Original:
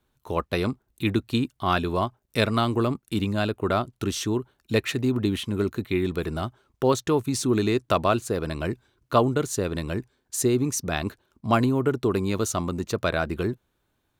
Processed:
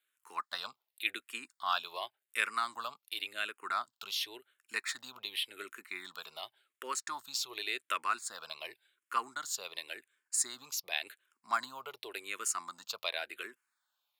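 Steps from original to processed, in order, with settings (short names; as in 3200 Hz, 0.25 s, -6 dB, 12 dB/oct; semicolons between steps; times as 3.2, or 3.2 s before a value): HPF 1500 Hz 12 dB/oct; notch 6000 Hz, Q 6.8; endless phaser -0.9 Hz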